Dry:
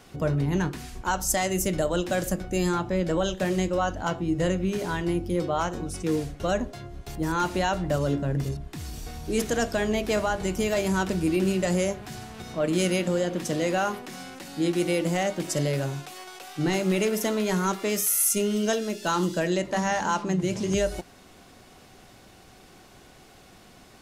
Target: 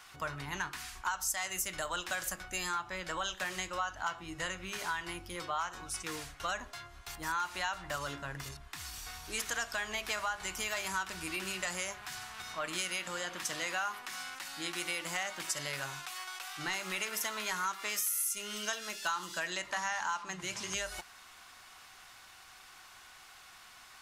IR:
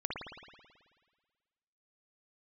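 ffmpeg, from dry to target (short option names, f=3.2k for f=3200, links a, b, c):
-af "lowshelf=f=740:t=q:w=1.5:g=-13.5,acompressor=threshold=-31dB:ratio=6,equalizer=f=190:w=0.87:g=-7"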